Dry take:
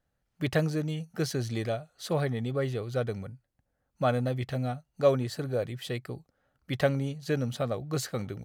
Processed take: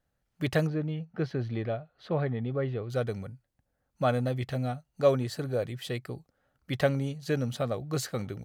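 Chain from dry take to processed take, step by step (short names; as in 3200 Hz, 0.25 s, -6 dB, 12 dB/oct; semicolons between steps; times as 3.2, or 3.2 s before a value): 0.67–2.9 air absorption 350 m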